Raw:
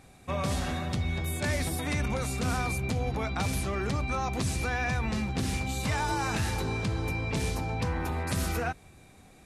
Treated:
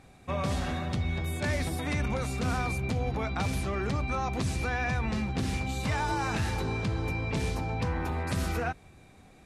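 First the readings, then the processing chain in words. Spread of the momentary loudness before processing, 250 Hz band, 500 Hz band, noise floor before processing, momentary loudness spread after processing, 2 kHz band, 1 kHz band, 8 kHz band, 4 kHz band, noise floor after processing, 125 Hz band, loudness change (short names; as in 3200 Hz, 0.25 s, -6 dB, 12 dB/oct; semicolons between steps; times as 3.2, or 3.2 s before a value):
2 LU, 0.0 dB, 0.0 dB, -55 dBFS, 2 LU, -0.5 dB, 0.0 dB, -5.0 dB, -2.0 dB, -55 dBFS, 0.0 dB, -0.5 dB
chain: high shelf 6700 Hz -9 dB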